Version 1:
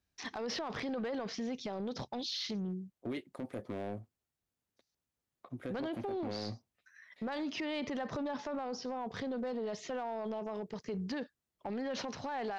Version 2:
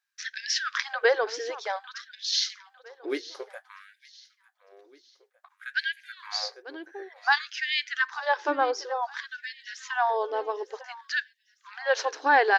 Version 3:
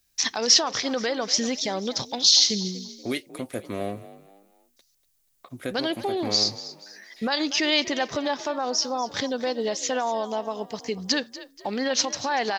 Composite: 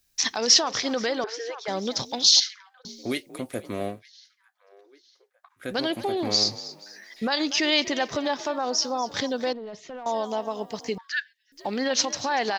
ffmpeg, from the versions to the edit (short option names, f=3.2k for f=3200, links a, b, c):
-filter_complex "[1:a]asplit=4[a][b][c][d];[2:a]asplit=6[e][f][g][h][i][j];[e]atrim=end=1.242[k];[a]atrim=start=1.238:end=1.682[l];[f]atrim=start=1.678:end=2.402[m];[b]atrim=start=2.398:end=2.852[n];[g]atrim=start=2.848:end=4.03[o];[c]atrim=start=3.87:end=5.72[p];[h]atrim=start=5.56:end=9.532[q];[0:a]atrim=start=9.528:end=10.062[r];[i]atrim=start=10.058:end=10.982[s];[d]atrim=start=10.978:end=11.522[t];[j]atrim=start=11.518[u];[k][l]acrossfade=d=0.004:c1=hsin:c2=hsin[v];[v][m]acrossfade=d=0.004:c1=hsin:c2=hsin[w];[w][n]acrossfade=d=0.004:c1=hsin:c2=hsin[x];[x][o]acrossfade=d=0.004:c1=hsin:c2=hsin[y];[y][p]acrossfade=d=0.16:c1=tri:c2=tri[z];[z][q]acrossfade=d=0.16:c1=tri:c2=tri[aa];[aa][r]acrossfade=d=0.004:c1=hsin:c2=hsin[ab];[ab][s]acrossfade=d=0.004:c1=hsin:c2=hsin[ac];[ac][t]acrossfade=d=0.004:c1=hsin:c2=hsin[ad];[ad][u]acrossfade=d=0.004:c1=hsin:c2=hsin"